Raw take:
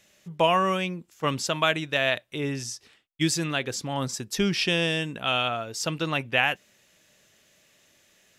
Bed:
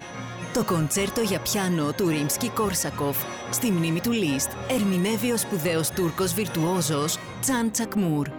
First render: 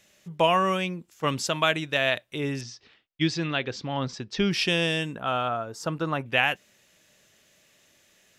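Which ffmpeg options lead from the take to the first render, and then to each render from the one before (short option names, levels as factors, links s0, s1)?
-filter_complex "[0:a]asettb=1/sr,asplit=3[s0][s1][s2];[s0]atrim=end=2.614[s3];[s1]atrim=start=2.61:end=4.51,asetpts=PTS-STARTPTS,afade=t=in:d=0.004:c=qsin,afade=t=out:st=1.896:d=0.004:c=qsin,lowpass=f=4800:w=0.5412,lowpass=f=4800:w=1.3066[s4];[s2]atrim=start=4.506[s5];[s3][s4]acrossfade=d=0.004:c1=hsin:c2=qsin[s6];[s6][s5]acrossfade=d=0.004:c1=qsin:c2=hsin,asettb=1/sr,asplit=3[s7][s8][s9];[s7]atrim=end=5.154[s10];[s8]atrim=start=5.15:end=6.26,asetpts=PTS-STARTPTS,afade=t=in:d=0.004:c=qsin,afade=t=out:st=1.106:d=0.004:c=qsin,highshelf=f=1800:t=q:w=1.5:g=-8.5[s11];[s9]atrim=start=6.256[s12];[s10][s11]acrossfade=d=0.004:c1=hsin:c2=qsin[s13];[s13][s12]acrossfade=d=0.004:c1=qsin:c2=hsin"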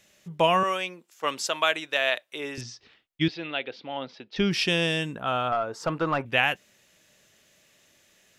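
-filter_complex "[0:a]asettb=1/sr,asplit=3[s0][s1][s2];[s0]atrim=end=0.634[s3];[s1]atrim=start=0.63:end=2.58,asetpts=PTS-STARTPTS,afade=t=in:d=0.004:c=qsin,afade=t=out:st=1.946:d=0.004:c=qsin,highpass=450[s4];[s2]atrim=start=2.576[s5];[s3][s4]acrossfade=d=0.004:c1=hsin:c2=qsin[s6];[s6][s5]acrossfade=d=0.004:c1=qsin:c2=hsin,asettb=1/sr,asplit=3[s7][s8][s9];[s7]atrim=end=3.284[s10];[s8]atrim=start=3.28:end=4.36,asetpts=PTS-STARTPTS,afade=t=in:d=0.004:c=qsin,afade=t=out:st=1.076:d=0.004:c=qsin,highpass=380,equalizer=f=380:t=q:w=4:g=-4,equalizer=f=1100:t=q:w=4:g=-9,equalizer=f=1700:t=q:w=4:g=-6,lowpass=f=3700:w=0.5412,lowpass=f=3700:w=1.3066[s11];[s9]atrim=start=4.356[s12];[s10][s11]acrossfade=d=0.004:c1=hsin:c2=qsin[s13];[s13][s12]acrossfade=d=0.004:c1=qsin:c2=hsin,asettb=1/sr,asplit=3[s14][s15][s16];[s14]atrim=end=5.524[s17];[s15]atrim=start=5.52:end=6.25,asetpts=PTS-STARTPTS,afade=t=in:d=0.004:c=qsin,afade=t=out:st=0.726:d=0.004:c=qsin,asplit=2[s18][s19];[s19]highpass=f=720:p=1,volume=5.62,asoftclip=type=tanh:threshold=0.2[s20];[s18][s20]amix=inputs=2:normalize=0,lowpass=f=1500:p=1,volume=0.501[s21];[s16]atrim=start=6.246[s22];[s17][s21]acrossfade=d=0.004:c1=hsin:c2=qsin[s23];[s23][s22]acrossfade=d=0.004:c1=qsin:c2=hsin"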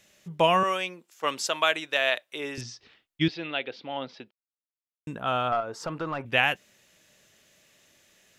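-filter_complex "[0:a]asettb=1/sr,asplit=3[s0][s1][s2];[s0]atrim=end=5.604[s3];[s1]atrim=start=5.6:end=6.27,asetpts=PTS-STARTPTS,afade=t=in:d=0.004:c=qsin,afade=t=out:st=0.666:d=0.004:c=qsin,acompressor=threshold=0.0251:ratio=2:attack=3.2:release=140:knee=1:detection=peak[s4];[s2]atrim=start=6.266[s5];[s3][s4]acrossfade=d=0.004:c1=hsin:c2=qsin[s6];[s6][s5]acrossfade=d=0.004:c1=qsin:c2=hsin,asplit=3[s7][s8][s9];[s7]atrim=end=4.31,asetpts=PTS-STARTPTS,afade=t=out:st=4.306:d=0.004:c=hsin[s10];[s8]atrim=start=4.31:end=5.07,asetpts=PTS-STARTPTS,volume=0[s11];[s9]atrim=start=5.07,asetpts=PTS-STARTPTS,afade=t=in:d=0.004:c=hsin[s12];[s10][s11][s12]concat=n=3:v=0:a=1"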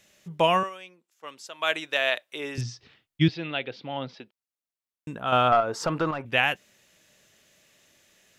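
-filter_complex "[0:a]asettb=1/sr,asplit=3[s0][s1][s2];[s0]atrim=end=2.554[s3];[s1]atrim=start=2.55:end=4.16,asetpts=PTS-STARTPTS,afade=t=in:d=0.004:c=qsin,afade=t=out:st=1.606:d=0.004:c=qsin,equalizer=f=120:w=1.1:g=10.5[s4];[s2]atrim=start=4.156[s5];[s3][s4]acrossfade=d=0.004:c1=hsin:c2=qsin[s6];[s6][s5]acrossfade=d=0.004:c1=qsin:c2=hsin,asettb=1/sr,asplit=3[s7][s8][s9];[s7]atrim=end=5.324[s10];[s8]atrim=start=5.32:end=6.11,asetpts=PTS-STARTPTS,afade=t=in:d=0.004:c=qsin,afade=t=out:st=0.786:d=0.004:c=qsin,acontrast=65[s11];[s9]atrim=start=6.106[s12];[s10][s11]acrossfade=d=0.004:c1=hsin:c2=qsin[s13];[s13][s12]acrossfade=d=0.004:c1=qsin:c2=hsin,asplit=3[s14][s15][s16];[s14]atrim=end=0.7,asetpts=PTS-STARTPTS,afade=t=out:st=0.57:d=0.13:silence=0.211349[s17];[s15]atrim=start=0.7:end=1.58,asetpts=PTS-STARTPTS,volume=0.211[s18];[s16]atrim=start=1.58,asetpts=PTS-STARTPTS,afade=t=in:d=0.13:silence=0.211349[s19];[s17][s18][s19]concat=n=3:v=0:a=1"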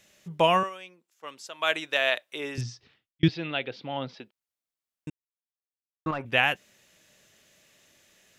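-filter_complex "[0:a]asplit=4[s0][s1][s2][s3];[s0]atrim=end=3.23,asetpts=PTS-STARTPTS,afade=t=out:st=2.28:d=0.95:c=qsin[s4];[s1]atrim=start=3.23:end=5.1,asetpts=PTS-STARTPTS,afade=t=in:d=0.004:c=hsin,afade=t=out:st=1.866:d=0.004:c=hsin[s5];[s2]atrim=start=5.1:end=6.06,asetpts=PTS-STARTPTS,volume=0[s6];[s3]atrim=start=6.06,asetpts=PTS-STARTPTS,afade=t=in:d=0.004:c=hsin[s7];[s4][s5][s6][s7]concat=n=4:v=0:a=1"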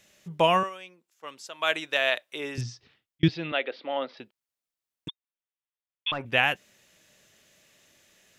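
-filter_complex "[0:a]asettb=1/sr,asplit=3[s0][s1][s2];[s0]atrim=end=3.524[s3];[s1]atrim=start=3.52:end=4.17,asetpts=PTS-STARTPTS,afade=t=in:d=0.004:c=qsin,afade=t=out:st=0.646:d=0.004:c=qsin,highpass=f=270:w=0.5412,highpass=f=270:w=1.3066,equalizer=f=580:t=q:w=4:g=7,equalizer=f=1200:t=q:w=4:g=5,equalizer=f=1900:t=q:w=4:g=6,lowpass=f=4700:w=0.5412,lowpass=f=4700:w=1.3066[s4];[s2]atrim=start=4.166[s5];[s3][s4]acrossfade=d=0.004:c1=hsin:c2=qsin[s6];[s6][s5]acrossfade=d=0.004:c1=qsin:c2=hsin,asettb=1/sr,asplit=3[s7][s8][s9];[s7]atrim=end=5.084[s10];[s8]atrim=start=5.08:end=6.12,asetpts=PTS-STARTPTS,afade=t=in:d=0.004:c=qsin,afade=t=out:st=1.036:d=0.004:c=qsin,lowpass=f=3100:t=q:w=0.5098,lowpass=f=3100:t=q:w=0.6013,lowpass=f=3100:t=q:w=0.9,lowpass=f=3100:t=q:w=2.563,afreqshift=-3700[s11];[s9]atrim=start=6.116[s12];[s10][s11]acrossfade=d=0.004:c1=hsin:c2=qsin[s13];[s13][s12]acrossfade=d=0.004:c1=qsin:c2=hsin"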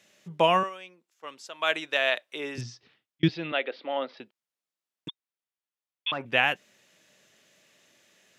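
-af "highpass=150,highshelf=f=9100:g=-8"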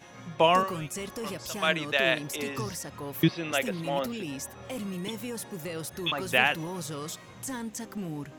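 -filter_complex "[1:a]volume=0.251[s0];[0:a][s0]amix=inputs=2:normalize=0"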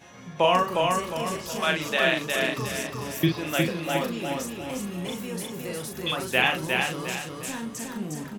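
-filter_complex "[0:a]asplit=2[s0][s1];[s1]adelay=39,volume=0.562[s2];[s0][s2]amix=inputs=2:normalize=0,aecho=1:1:358|716|1074|1432|1790:0.668|0.261|0.102|0.0396|0.0155"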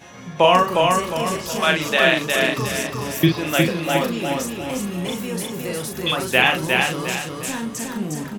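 -af "volume=2.11,alimiter=limit=0.891:level=0:latency=1"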